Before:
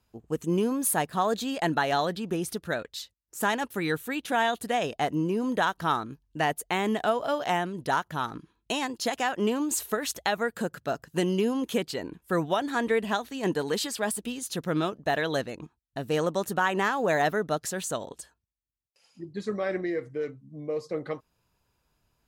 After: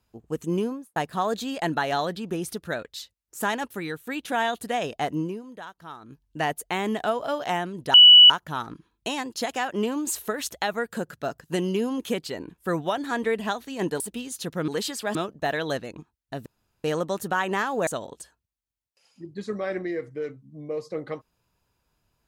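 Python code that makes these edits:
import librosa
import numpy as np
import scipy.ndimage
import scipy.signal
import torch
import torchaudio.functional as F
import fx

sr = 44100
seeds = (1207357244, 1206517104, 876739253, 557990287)

y = fx.studio_fade_out(x, sr, start_s=0.56, length_s=0.4)
y = fx.edit(y, sr, fx.fade_out_to(start_s=3.65, length_s=0.42, floor_db=-10.5),
    fx.fade_down_up(start_s=5.2, length_s=1.03, db=-15.0, fade_s=0.23),
    fx.insert_tone(at_s=7.94, length_s=0.36, hz=2950.0, db=-7.0),
    fx.move(start_s=13.64, length_s=0.47, to_s=14.79),
    fx.insert_room_tone(at_s=16.1, length_s=0.38),
    fx.cut(start_s=17.13, length_s=0.73), tone=tone)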